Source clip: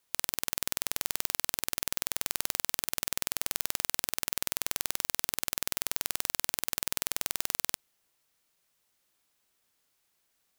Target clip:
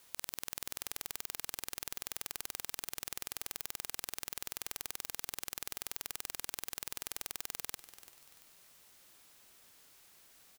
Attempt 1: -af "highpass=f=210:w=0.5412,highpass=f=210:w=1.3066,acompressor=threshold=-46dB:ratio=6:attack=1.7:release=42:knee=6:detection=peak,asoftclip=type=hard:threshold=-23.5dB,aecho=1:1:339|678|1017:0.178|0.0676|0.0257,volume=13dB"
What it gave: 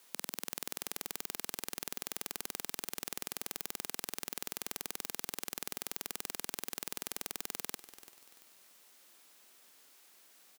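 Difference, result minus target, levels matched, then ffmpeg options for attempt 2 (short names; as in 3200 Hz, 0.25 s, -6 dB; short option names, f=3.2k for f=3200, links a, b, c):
250 Hz band +7.0 dB; compressor: peak gain reduction -5.5 dB
-af "acompressor=threshold=-52.5dB:ratio=6:attack=1.7:release=42:knee=6:detection=peak,asoftclip=type=hard:threshold=-23.5dB,aecho=1:1:339|678|1017:0.178|0.0676|0.0257,volume=13dB"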